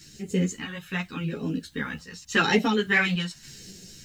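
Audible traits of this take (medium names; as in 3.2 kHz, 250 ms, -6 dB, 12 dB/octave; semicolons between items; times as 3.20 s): phasing stages 2, 0.86 Hz, lowest notch 350–1100 Hz; a quantiser's noise floor 12-bit, dither triangular; random-step tremolo; a shimmering, thickened sound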